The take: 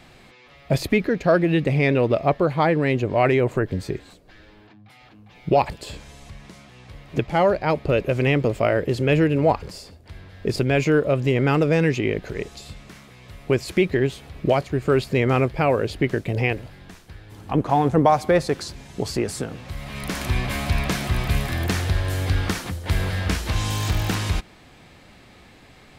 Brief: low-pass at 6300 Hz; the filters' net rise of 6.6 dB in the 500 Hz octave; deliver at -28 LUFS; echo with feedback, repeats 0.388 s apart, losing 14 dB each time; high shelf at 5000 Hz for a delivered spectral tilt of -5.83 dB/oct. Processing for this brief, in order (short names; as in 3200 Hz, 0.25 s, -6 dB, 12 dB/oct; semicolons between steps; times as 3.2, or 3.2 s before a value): LPF 6300 Hz; bell 500 Hz +8 dB; high shelf 5000 Hz +4 dB; feedback echo 0.388 s, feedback 20%, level -14 dB; gain -10 dB